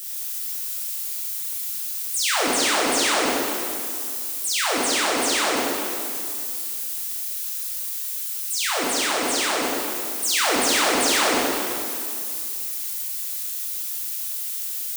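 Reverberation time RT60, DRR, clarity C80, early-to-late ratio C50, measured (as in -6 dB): 2.4 s, -6.5 dB, -1.0 dB, -2.5 dB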